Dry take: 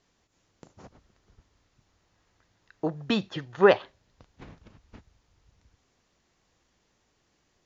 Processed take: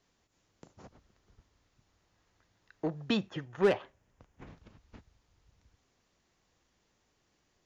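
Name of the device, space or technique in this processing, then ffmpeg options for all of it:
one-band saturation: -filter_complex "[0:a]asettb=1/sr,asplit=3[a][b][c];[a]atrim=end=3.174[d];[b]atrim=start=3.17:end=4.47,asetpts=PTS-STARTPTS,afade=t=in:d=0.004:c=qsin,afade=t=out:st=1.296:d=0.004:c=qsin,equalizer=f=4.2k:t=o:w=0.74:g=-10.5[e];[c]atrim=start=4.466[f];[d][e]acrossfade=d=0.004:c1=hsin:c2=qsin[g];[g][f]acrossfade=d=0.004:c1=qsin:c2=hsin,acrossover=split=400|2200[h][i][j];[i]asoftclip=type=tanh:threshold=-27dB[k];[h][k][j]amix=inputs=3:normalize=0,volume=-3.5dB"

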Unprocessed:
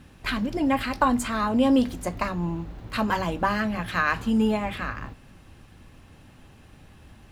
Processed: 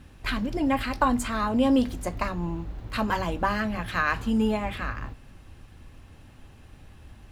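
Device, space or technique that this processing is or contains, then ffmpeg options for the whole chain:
low shelf boost with a cut just above: -af "lowshelf=f=100:g=7,equalizer=f=170:t=o:w=0.74:g=-3.5,volume=-1.5dB"

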